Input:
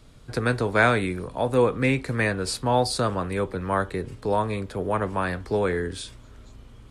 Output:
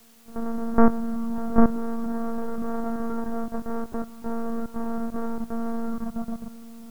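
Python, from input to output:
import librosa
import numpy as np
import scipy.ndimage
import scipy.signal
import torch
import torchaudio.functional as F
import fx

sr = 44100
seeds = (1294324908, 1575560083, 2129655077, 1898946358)

p1 = np.r_[np.sort(x[:len(x) // 256 * 256].reshape(-1, 256), axis=1).ravel(), x[len(x) // 256 * 256:]]
p2 = scipy.signal.sosfilt(scipy.signal.ellip(3, 1.0, 40, [150.0, 1400.0], 'bandpass', fs=sr, output='sos'), p1)
p3 = fx.tilt_eq(p2, sr, slope=-2.0)
p4 = p3 + fx.echo_swell(p3, sr, ms=128, loudest=5, wet_db=-17.5, dry=0)
p5 = fx.level_steps(p4, sr, step_db=15)
p6 = fx.lpc_monotone(p5, sr, seeds[0], pitch_hz=230.0, order=16)
p7 = fx.quant_dither(p6, sr, seeds[1], bits=10, dither='triangular')
y = F.gain(torch.from_numpy(p7), 3.5).numpy()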